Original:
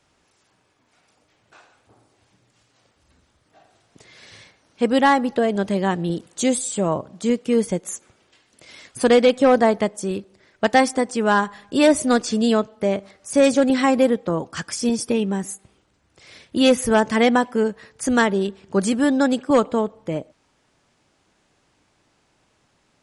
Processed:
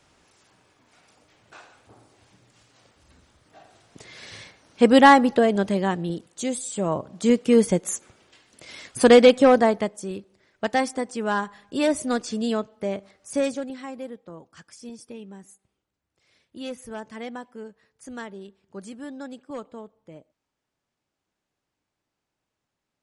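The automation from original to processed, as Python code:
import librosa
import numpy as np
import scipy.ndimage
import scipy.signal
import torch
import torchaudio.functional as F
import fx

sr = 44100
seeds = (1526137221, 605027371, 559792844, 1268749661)

y = fx.gain(x, sr, db=fx.line((5.13, 3.5), (6.49, -8.0), (7.36, 2.0), (9.28, 2.0), (10.05, -7.0), (13.37, -7.0), (13.77, -19.0)))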